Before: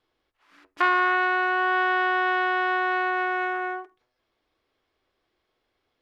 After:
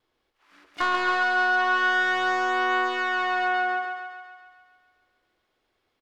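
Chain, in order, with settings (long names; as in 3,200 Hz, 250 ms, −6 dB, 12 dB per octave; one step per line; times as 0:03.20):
pitch vibrato 0.49 Hz 6.8 cents
pitch-shifted copies added −7 semitones −17 dB, +12 semitones −16 dB
soft clipping −16.5 dBFS, distortion −14 dB
feedback echo with a high-pass in the loop 138 ms, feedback 62%, high-pass 340 Hz, level −5 dB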